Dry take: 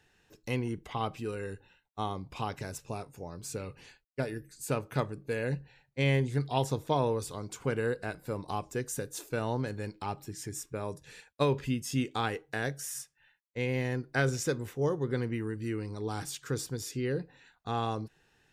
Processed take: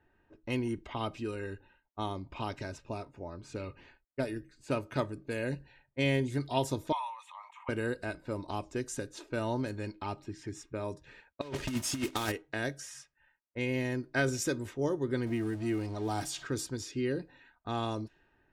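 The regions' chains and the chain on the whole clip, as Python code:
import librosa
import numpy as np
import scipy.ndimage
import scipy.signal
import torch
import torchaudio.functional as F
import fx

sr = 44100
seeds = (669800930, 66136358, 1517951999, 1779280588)

y = fx.chain(x, sr, fx.steep_highpass(hz=690.0, slope=72),
    fx.fixed_phaser(hz=1000.0, stages=8),
    fx.sustainer(db_per_s=87.0), at=(6.92, 7.69))
y = fx.chain(y, sr, fx.block_float(bits=3),
    fx.over_compress(threshold_db=-32.0, ratio=-0.5), at=(11.41, 12.32))
y = fx.chain(y, sr, fx.zero_step(step_db=-45.0),
    fx.peak_eq(hz=720.0, db=10.0, octaves=0.41), at=(15.26, 16.47))
y = fx.env_lowpass(y, sr, base_hz=1300.0, full_db=-29.0)
y = fx.dynamic_eq(y, sr, hz=1200.0, q=0.86, threshold_db=-42.0, ratio=4.0, max_db=-3)
y = y + 0.49 * np.pad(y, (int(3.2 * sr / 1000.0), 0))[:len(y)]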